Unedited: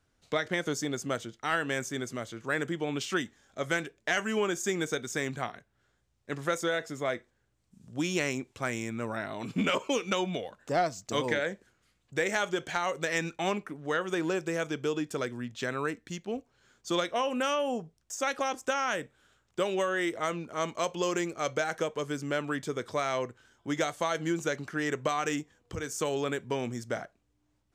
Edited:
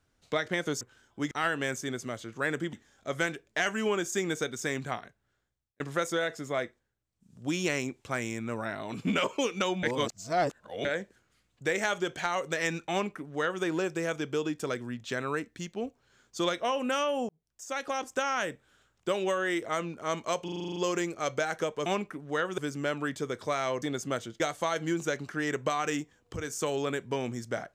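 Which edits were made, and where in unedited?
0.81–1.39 swap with 23.29–23.79
2.81–3.24 cut
5.48–6.31 fade out
7.13–7.96 dip -11 dB, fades 0.32 s
10.34–11.36 reverse
13.42–14.14 copy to 22.05
17.8–18.88 fade in equal-power
20.95 stutter 0.04 s, 9 plays

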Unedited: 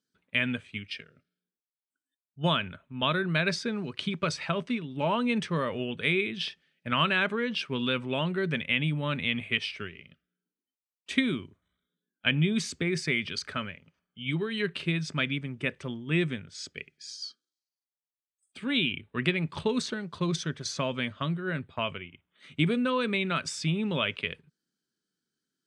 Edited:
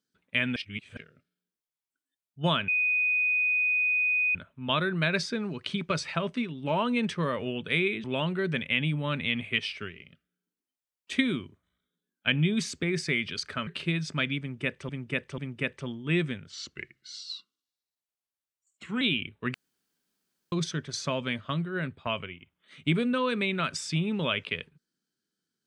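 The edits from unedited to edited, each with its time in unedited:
0.56–0.97 reverse
2.68 add tone 2490 Hz -22.5 dBFS 1.67 s
6.37–8.03 cut
13.66–14.67 cut
15.4–15.89 loop, 3 plays
16.52–18.73 speed 88%
19.26–20.24 room tone

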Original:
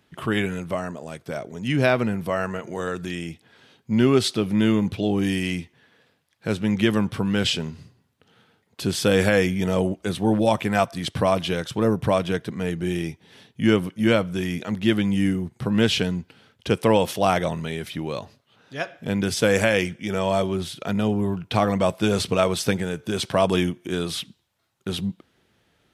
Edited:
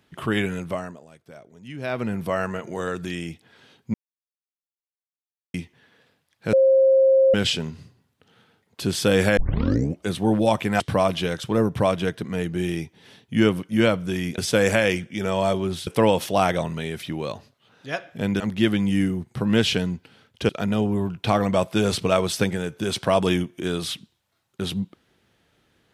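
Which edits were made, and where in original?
0.67–2.21 dip -14 dB, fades 0.40 s
3.94–5.54 mute
6.53–7.34 bleep 533 Hz -12.5 dBFS
9.37 tape start 0.64 s
10.8–11.07 cut
14.65–16.74 swap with 19.27–20.76

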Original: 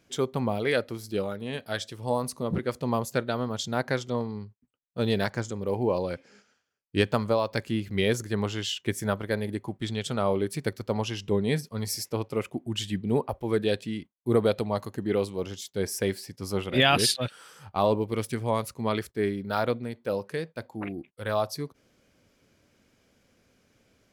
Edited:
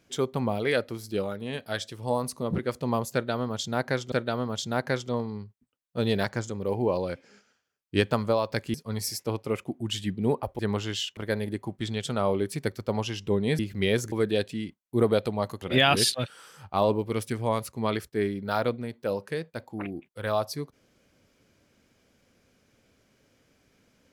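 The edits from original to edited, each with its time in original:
3.13–4.12 loop, 2 plays
7.75–8.28 swap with 11.6–13.45
8.86–9.18 cut
14.95–16.64 cut

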